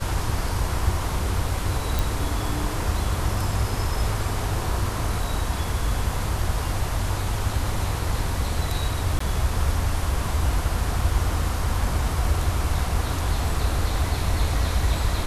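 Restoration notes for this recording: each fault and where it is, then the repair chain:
1.99 s: pop
9.19–9.20 s: dropout 14 ms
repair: de-click; interpolate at 9.19 s, 14 ms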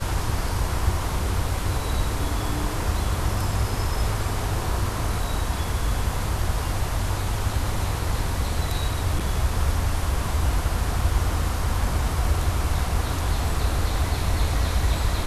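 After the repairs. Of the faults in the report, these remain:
nothing left

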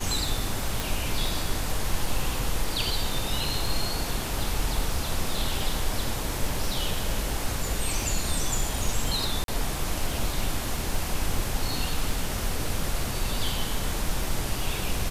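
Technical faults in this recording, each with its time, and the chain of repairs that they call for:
crackle 23 per s -30 dBFS
0.80 s: pop
9.44–9.48 s: dropout 42 ms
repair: de-click; interpolate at 9.44 s, 42 ms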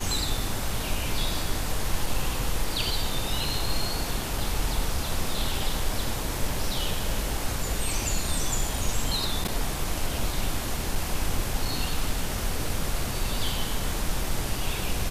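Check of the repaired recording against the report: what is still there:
nothing left

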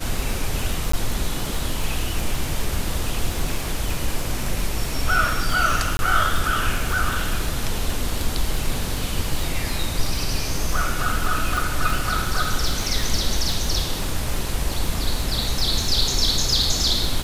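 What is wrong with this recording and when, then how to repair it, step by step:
crackle 49 per s -24 dBFS
0.92–0.93 s: dropout 14 ms
5.97–5.99 s: dropout 21 ms
11.57 s: pop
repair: de-click; interpolate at 0.92 s, 14 ms; interpolate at 5.97 s, 21 ms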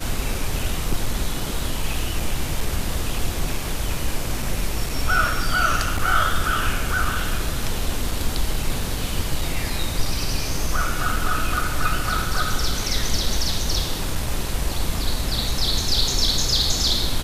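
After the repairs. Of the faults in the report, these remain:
11.57 s: pop

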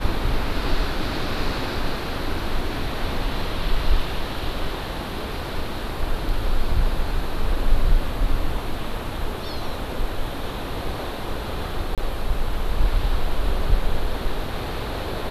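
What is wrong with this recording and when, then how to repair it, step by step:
11.95–11.98 s: dropout 27 ms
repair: interpolate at 11.95 s, 27 ms

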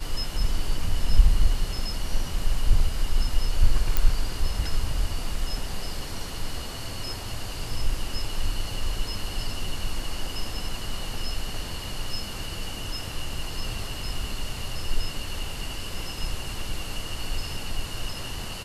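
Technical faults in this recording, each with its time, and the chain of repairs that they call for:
3.97 s: pop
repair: de-click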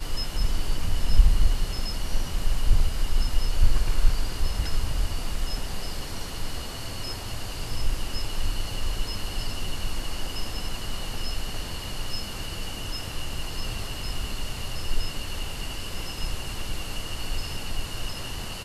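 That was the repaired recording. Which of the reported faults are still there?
nothing left

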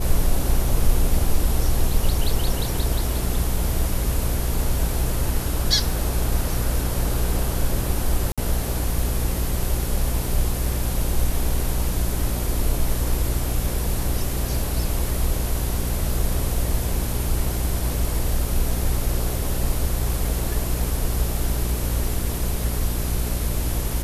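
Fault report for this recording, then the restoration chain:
hum 60 Hz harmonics 7 -26 dBFS
8.32–8.38 s: dropout 56 ms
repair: de-hum 60 Hz, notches 7; interpolate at 8.32 s, 56 ms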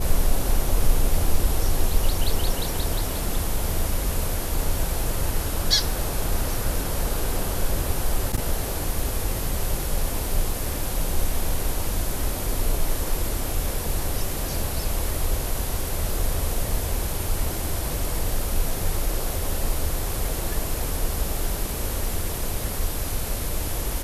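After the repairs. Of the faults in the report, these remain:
nothing left

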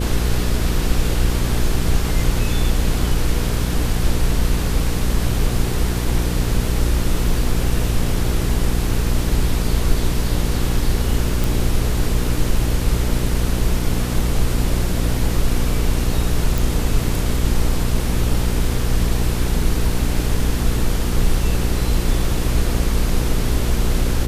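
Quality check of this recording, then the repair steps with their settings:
hum 60 Hz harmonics 8 -22 dBFS
11.44 s: pop
16.58 s: pop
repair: de-click; de-hum 60 Hz, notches 8

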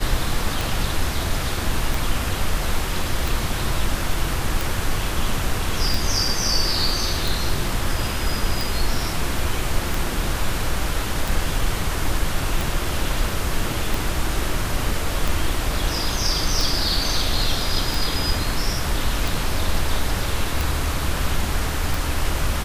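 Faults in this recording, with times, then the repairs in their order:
tick 45 rpm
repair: de-click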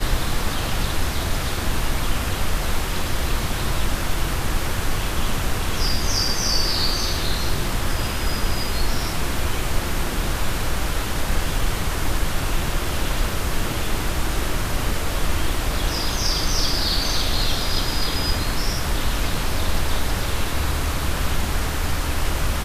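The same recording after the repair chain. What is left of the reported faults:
nothing left

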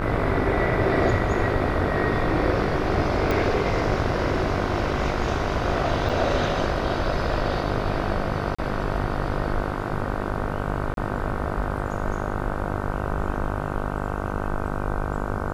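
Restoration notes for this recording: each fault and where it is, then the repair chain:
buzz 50 Hz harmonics 31 -29 dBFS
3.31 s: pop -10 dBFS
6.09–6.10 s: dropout 6 ms
8.55–8.59 s: dropout 35 ms
10.94–10.97 s: dropout 32 ms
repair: de-click; de-hum 50 Hz, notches 31; interpolate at 6.09 s, 6 ms; interpolate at 8.55 s, 35 ms; interpolate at 10.94 s, 32 ms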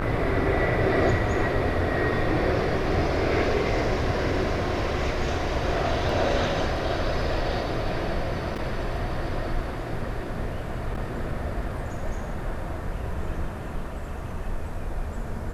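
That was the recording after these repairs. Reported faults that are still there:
3.31 s: pop

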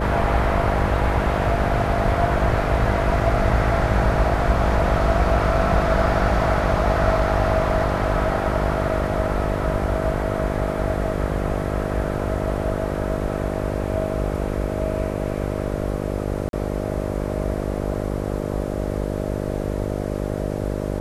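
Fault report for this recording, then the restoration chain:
buzz 50 Hz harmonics 12 -26 dBFS
16.49–16.53 s: dropout 42 ms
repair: de-hum 50 Hz, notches 12; interpolate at 16.49 s, 42 ms

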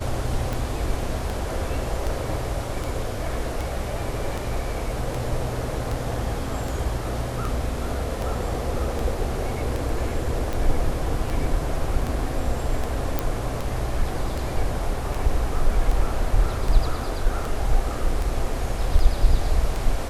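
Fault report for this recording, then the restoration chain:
tick 78 rpm
13.19 s: pop -8 dBFS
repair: de-click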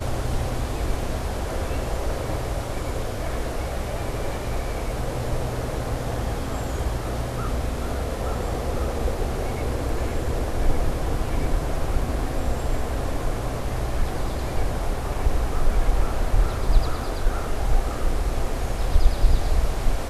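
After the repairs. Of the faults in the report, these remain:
nothing left

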